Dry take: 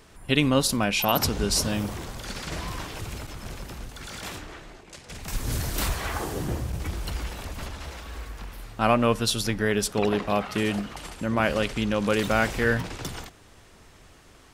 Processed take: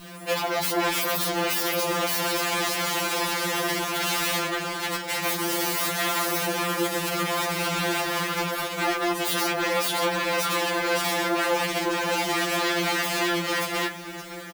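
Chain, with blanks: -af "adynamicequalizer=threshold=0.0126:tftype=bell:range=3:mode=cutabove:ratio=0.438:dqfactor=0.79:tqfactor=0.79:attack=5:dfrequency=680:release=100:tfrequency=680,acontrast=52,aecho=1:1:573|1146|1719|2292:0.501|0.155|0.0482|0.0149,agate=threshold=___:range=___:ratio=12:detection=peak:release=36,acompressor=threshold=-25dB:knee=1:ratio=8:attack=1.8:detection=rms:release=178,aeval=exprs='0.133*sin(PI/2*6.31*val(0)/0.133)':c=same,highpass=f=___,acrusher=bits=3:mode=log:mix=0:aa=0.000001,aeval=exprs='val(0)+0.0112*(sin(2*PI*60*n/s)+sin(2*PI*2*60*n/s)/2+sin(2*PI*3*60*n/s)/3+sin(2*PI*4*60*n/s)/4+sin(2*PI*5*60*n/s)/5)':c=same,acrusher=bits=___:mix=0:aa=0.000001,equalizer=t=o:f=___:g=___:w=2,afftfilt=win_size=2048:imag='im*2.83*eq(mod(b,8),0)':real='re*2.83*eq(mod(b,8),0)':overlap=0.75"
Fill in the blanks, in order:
-36dB, -10dB, 290, 6, 7800, -6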